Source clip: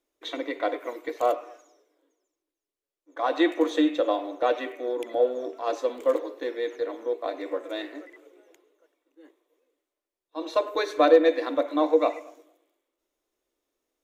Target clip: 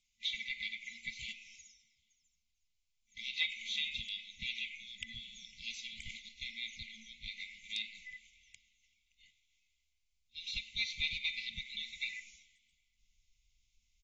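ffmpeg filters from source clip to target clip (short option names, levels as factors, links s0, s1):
-filter_complex "[0:a]acrossover=split=4900[s0][s1];[s1]acompressor=threshold=0.00141:ratio=4:attack=1:release=60[s2];[s0][s2]amix=inputs=2:normalize=0,afftfilt=real='re*(1-between(b*sr/4096,230,2000))':imag='im*(1-between(b*sr/4096,230,2000))':win_size=4096:overlap=0.75,asubboost=boost=7.5:cutoff=73,asplit=2[s3][s4];[s4]acompressor=threshold=0.00251:ratio=4,volume=0.891[s5];[s3][s5]amix=inputs=2:normalize=0,asoftclip=type=tanh:threshold=0.075,asplit=2[s6][s7];[s7]adelay=384,lowpass=f=820:p=1,volume=0.075,asplit=2[s8][s9];[s9]adelay=384,lowpass=f=820:p=1,volume=0.43,asplit=2[s10][s11];[s11]adelay=384,lowpass=f=820:p=1,volume=0.43[s12];[s8][s10][s12]amix=inputs=3:normalize=0[s13];[s6][s13]amix=inputs=2:normalize=0,volume=1.19" -ar 32000 -c:a aac -b:a 24k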